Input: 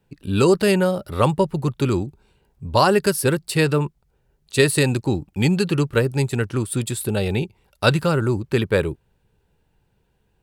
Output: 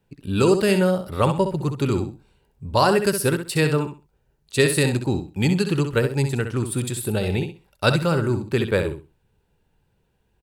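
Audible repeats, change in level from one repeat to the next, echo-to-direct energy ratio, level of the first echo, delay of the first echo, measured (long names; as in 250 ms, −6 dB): 3, −13.0 dB, −8.0 dB, −8.0 dB, 65 ms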